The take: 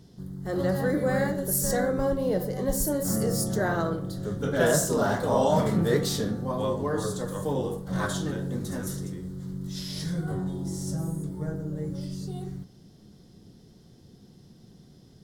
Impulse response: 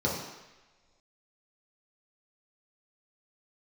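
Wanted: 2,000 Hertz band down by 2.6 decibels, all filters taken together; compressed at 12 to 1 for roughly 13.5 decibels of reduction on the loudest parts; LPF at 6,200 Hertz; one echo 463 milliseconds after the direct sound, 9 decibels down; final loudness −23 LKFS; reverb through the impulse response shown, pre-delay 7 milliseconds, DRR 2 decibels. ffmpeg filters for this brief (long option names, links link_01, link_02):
-filter_complex "[0:a]lowpass=6200,equalizer=frequency=2000:width_type=o:gain=-3.5,acompressor=threshold=-32dB:ratio=12,aecho=1:1:463:0.355,asplit=2[link_01][link_02];[1:a]atrim=start_sample=2205,adelay=7[link_03];[link_02][link_03]afir=irnorm=-1:irlink=0,volume=-12dB[link_04];[link_01][link_04]amix=inputs=2:normalize=0,volume=8.5dB"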